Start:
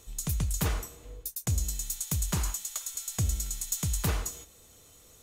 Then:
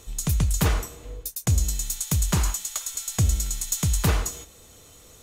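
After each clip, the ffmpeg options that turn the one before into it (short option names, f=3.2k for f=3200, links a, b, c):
-af "highshelf=f=7.9k:g=-5,volume=7.5dB"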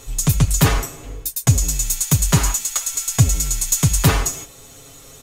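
-af "aecho=1:1:7.3:0.78,volume=6dB"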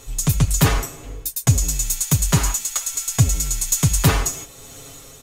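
-af "dynaudnorm=f=130:g=7:m=6.5dB,volume=-2dB"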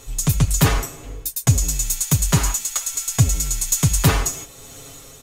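-af anull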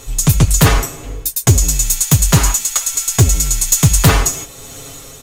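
-af "aeval=exprs='0.376*(abs(mod(val(0)/0.376+3,4)-2)-1)':c=same,volume=7dB"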